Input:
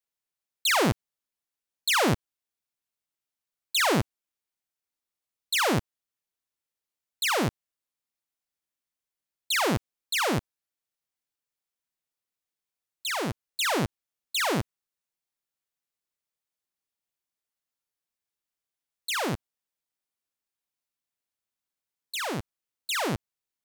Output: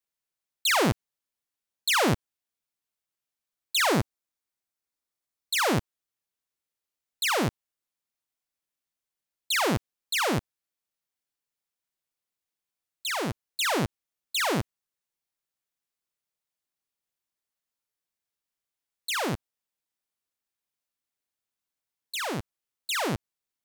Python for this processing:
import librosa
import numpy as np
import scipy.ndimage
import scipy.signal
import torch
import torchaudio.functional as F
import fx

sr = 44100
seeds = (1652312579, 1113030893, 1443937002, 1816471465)

y = fx.peak_eq(x, sr, hz=2900.0, db=-3.5, octaves=0.4, at=(3.9, 5.67))